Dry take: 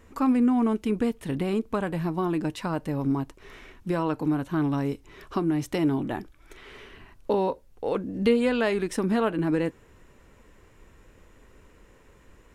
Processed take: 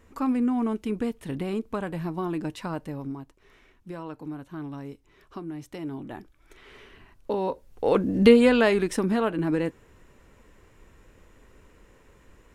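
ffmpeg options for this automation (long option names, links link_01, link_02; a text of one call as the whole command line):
ffmpeg -i in.wav -af "volume=15.5dB,afade=type=out:start_time=2.72:duration=0.45:silence=0.398107,afade=type=in:start_time=5.83:duration=0.92:silence=0.421697,afade=type=in:start_time=7.4:duration=0.7:silence=0.281838,afade=type=out:start_time=8.1:duration=1.05:silence=0.398107" out.wav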